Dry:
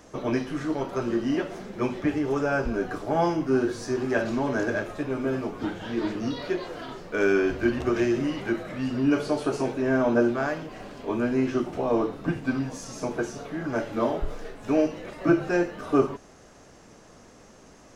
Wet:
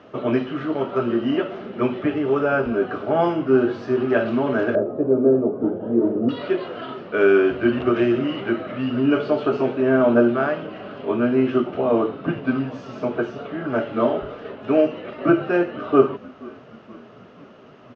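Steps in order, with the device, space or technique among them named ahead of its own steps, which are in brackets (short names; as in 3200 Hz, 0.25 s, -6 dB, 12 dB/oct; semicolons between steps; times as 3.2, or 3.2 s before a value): frequency-shifting delay pedal into a guitar cabinet (frequency-shifting echo 0.477 s, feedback 60%, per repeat -39 Hz, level -22 dB; speaker cabinet 100–3800 Hz, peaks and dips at 120 Hz +6 dB, 240 Hz +6 dB, 400 Hz +7 dB, 620 Hz +7 dB, 1300 Hz +9 dB, 2900 Hz +8 dB); 4.75–6.29 EQ curve 100 Hz 0 dB, 500 Hz +7 dB, 2700 Hz -27 dB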